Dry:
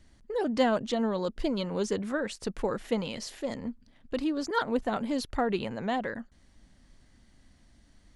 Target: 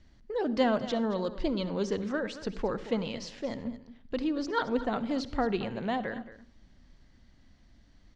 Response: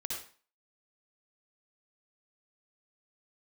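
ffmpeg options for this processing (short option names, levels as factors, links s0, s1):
-filter_complex "[0:a]lowpass=f=6000:w=0.5412,lowpass=f=6000:w=1.3066,aecho=1:1:224:0.178,asplit=2[s0][s1];[1:a]atrim=start_sample=2205,lowshelf=f=430:g=10[s2];[s1][s2]afir=irnorm=-1:irlink=0,volume=0.158[s3];[s0][s3]amix=inputs=2:normalize=0,volume=0.75"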